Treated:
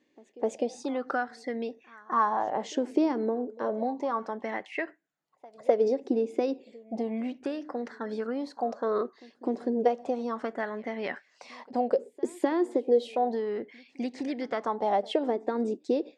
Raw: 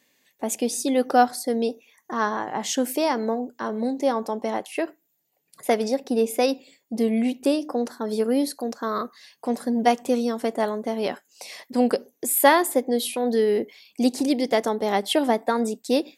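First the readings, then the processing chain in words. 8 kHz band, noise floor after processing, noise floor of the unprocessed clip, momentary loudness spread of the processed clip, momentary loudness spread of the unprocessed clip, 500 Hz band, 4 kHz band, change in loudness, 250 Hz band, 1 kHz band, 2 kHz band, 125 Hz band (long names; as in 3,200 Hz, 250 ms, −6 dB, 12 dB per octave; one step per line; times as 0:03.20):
below −20 dB, −68 dBFS, −71 dBFS, 10 LU, 10 LU, −5.0 dB, −14.0 dB, −6.5 dB, −7.0 dB, −6.0 dB, −8.0 dB, can't be measured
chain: low-pass filter 7,300 Hz 24 dB per octave
high-shelf EQ 4,400 Hz −12 dB
downward compressor 6 to 1, threshold −22 dBFS, peak gain reduction 11 dB
echo ahead of the sound 254 ms −23 dB
auto-filter bell 0.32 Hz 330–2,000 Hz +15 dB
level −7 dB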